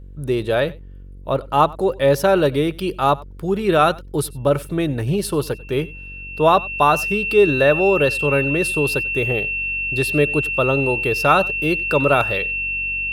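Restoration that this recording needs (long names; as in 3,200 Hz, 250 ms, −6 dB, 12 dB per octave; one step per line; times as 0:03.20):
hum removal 46.9 Hz, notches 11
notch filter 2,700 Hz, Q 30
echo removal 94 ms −22.5 dB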